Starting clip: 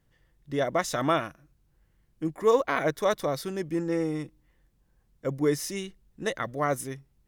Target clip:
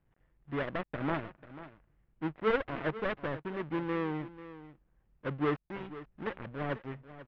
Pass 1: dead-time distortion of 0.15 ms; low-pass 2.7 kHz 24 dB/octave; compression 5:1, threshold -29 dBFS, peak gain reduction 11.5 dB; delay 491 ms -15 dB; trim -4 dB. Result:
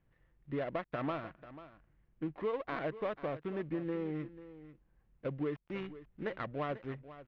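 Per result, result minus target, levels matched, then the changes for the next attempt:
compression: peak gain reduction +11.5 dB; dead-time distortion: distortion -10 dB
remove: compression 5:1, threshold -29 dBFS, peak gain reduction 11.5 dB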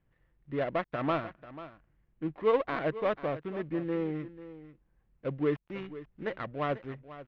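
dead-time distortion: distortion -10 dB
change: dead-time distortion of 0.53 ms

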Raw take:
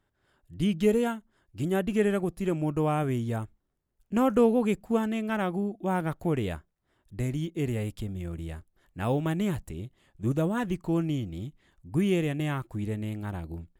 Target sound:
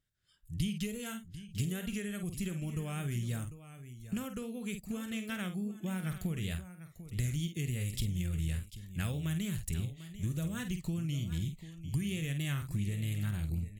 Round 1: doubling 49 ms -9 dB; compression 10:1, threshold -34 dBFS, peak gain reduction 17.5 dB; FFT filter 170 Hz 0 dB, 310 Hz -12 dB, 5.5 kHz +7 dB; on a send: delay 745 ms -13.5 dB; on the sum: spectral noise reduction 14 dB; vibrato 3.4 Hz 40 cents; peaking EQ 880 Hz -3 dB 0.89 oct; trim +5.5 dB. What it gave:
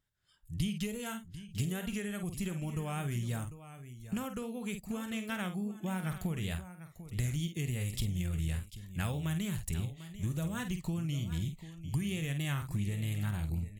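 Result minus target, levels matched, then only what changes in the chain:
1 kHz band +5.5 dB
change: peaking EQ 880 Hz -12 dB 0.89 oct

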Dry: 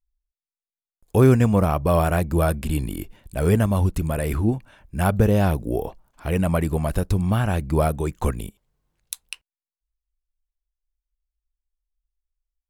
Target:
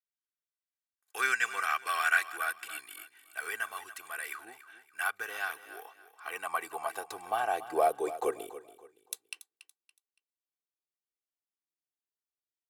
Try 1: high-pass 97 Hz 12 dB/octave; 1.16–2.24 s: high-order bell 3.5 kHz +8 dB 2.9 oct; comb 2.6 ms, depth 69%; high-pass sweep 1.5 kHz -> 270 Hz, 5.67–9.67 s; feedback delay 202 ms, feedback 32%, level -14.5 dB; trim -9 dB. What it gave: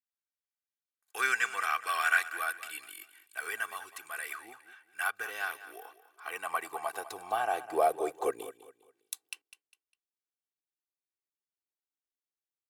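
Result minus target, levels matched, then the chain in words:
echo 81 ms early
high-pass 97 Hz 12 dB/octave; 1.16–2.24 s: high-order bell 3.5 kHz +8 dB 2.9 oct; comb 2.6 ms, depth 69%; high-pass sweep 1.5 kHz -> 270 Hz, 5.67–9.67 s; feedback delay 283 ms, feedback 32%, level -14.5 dB; trim -9 dB

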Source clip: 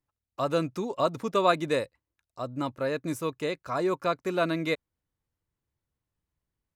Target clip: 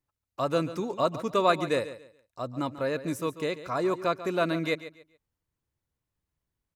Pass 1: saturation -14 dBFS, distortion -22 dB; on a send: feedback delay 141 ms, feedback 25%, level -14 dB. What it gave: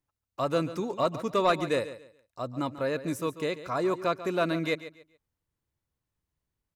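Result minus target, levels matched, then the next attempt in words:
saturation: distortion +16 dB
saturation -4.5 dBFS, distortion -38 dB; on a send: feedback delay 141 ms, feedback 25%, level -14 dB

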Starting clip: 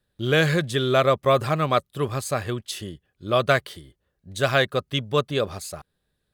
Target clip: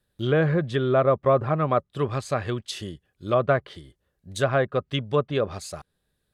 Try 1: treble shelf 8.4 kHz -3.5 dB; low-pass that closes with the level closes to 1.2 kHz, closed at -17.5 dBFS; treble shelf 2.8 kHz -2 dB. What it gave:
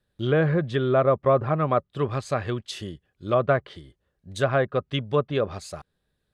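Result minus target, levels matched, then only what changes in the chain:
8 kHz band -3.5 dB
change: first treble shelf 8.4 kHz +8.5 dB

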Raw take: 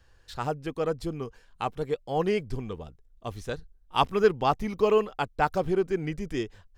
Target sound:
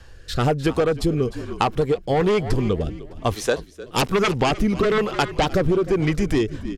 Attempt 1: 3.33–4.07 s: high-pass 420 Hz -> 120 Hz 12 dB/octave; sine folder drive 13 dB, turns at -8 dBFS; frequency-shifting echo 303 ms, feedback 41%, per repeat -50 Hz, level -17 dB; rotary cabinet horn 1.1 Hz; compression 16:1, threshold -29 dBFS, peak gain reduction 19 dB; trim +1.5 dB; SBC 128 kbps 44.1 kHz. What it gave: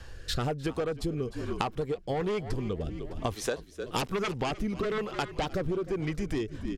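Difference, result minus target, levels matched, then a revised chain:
compression: peak gain reduction +11.5 dB
3.33–4.07 s: high-pass 420 Hz -> 120 Hz 12 dB/octave; sine folder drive 13 dB, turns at -8 dBFS; frequency-shifting echo 303 ms, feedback 41%, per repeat -50 Hz, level -17 dB; rotary cabinet horn 1.1 Hz; compression 16:1, threshold -17 dBFS, peak gain reduction 8 dB; trim +1.5 dB; SBC 128 kbps 44.1 kHz

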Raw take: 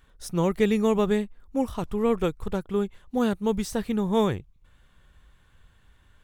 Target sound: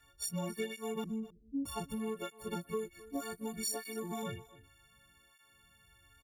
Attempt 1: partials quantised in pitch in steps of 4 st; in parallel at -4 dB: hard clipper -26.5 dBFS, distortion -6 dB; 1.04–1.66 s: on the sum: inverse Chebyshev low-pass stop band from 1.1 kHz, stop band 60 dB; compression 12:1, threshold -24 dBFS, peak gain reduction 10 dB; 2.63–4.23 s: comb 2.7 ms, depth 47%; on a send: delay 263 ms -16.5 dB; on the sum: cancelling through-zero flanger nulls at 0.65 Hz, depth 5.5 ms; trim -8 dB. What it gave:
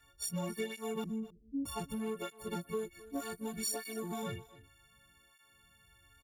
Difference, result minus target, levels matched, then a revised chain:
hard clipper: distortion +17 dB
partials quantised in pitch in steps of 4 st; in parallel at -4 dB: hard clipper -15 dBFS, distortion -24 dB; 1.04–1.66 s: on the sum: inverse Chebyshev low-pass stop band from 1.1 kHz, stop band 60 dB; compression 12:1, threshold -24 dBFS, peak gain reduction 12.5 dB; 2.63–4.23 s: comb 2.7 ms, depth 47%; on a send: delay 263 ms -16.5 dB; on the sum: cancelling through-zero flanger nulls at 0.65 Hz, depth 5.5 ms; trim -8 dB

